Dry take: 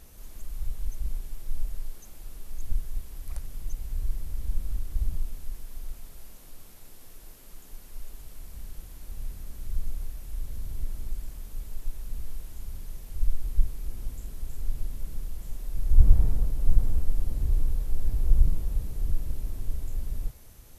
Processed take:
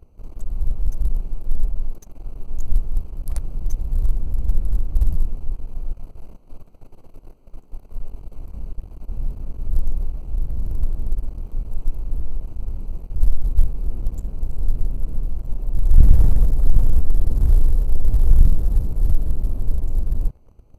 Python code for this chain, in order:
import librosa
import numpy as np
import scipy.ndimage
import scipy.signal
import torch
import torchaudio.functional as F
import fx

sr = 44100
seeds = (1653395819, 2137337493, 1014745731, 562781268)

y = fx.wiener(x, sr, points=25)
y = fx.leveller(y, sr, passes=2)
y = y * librosa.db_to_amplitude(3.0)